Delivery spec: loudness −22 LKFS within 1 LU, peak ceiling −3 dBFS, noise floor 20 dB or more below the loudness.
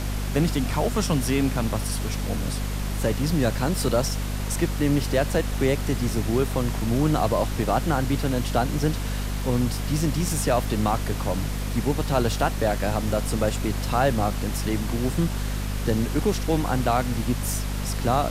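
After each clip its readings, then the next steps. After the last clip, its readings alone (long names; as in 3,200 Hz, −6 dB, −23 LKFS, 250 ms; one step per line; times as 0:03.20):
mains hum 50 Hz; hum harmonics up to 250 Hz; level of the hum −25 dBFS; background noise floor −28 dBFS; target noise floor −45 dBFS; integrated loudness −25.0 LKFS; sample peak −8.5 dBFS; target loudness −22.0 LKFS
→ hum removal 50 Hz, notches 5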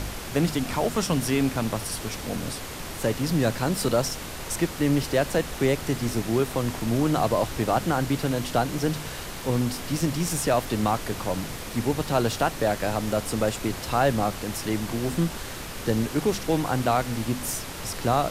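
mains hum none found; background noise floor −36 dBFS; target noise floor −46 dBFS
→ noise reduction from a noise print 10 dB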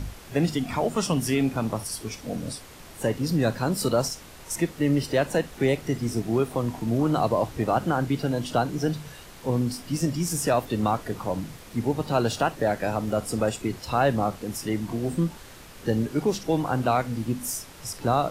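background noise floor −46 dBFS; target noise floor −47 dBFS
→ noise reduction from a noise print 6 dB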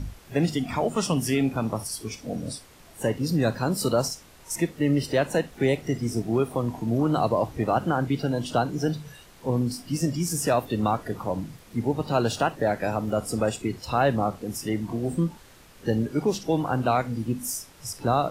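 background noise floor −51 dBFS; integrated loudness −26.5 LKFS; sample peak −10.0 dBFS; target loudness −22.0 LKFS
→ level +4.5 dB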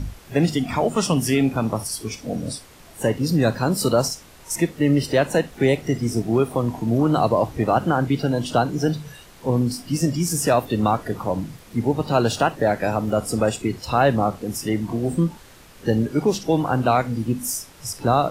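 integrated loudness −22.0 LKFS; sample peak −5.5 dBFS; background noise floor −47 dBFS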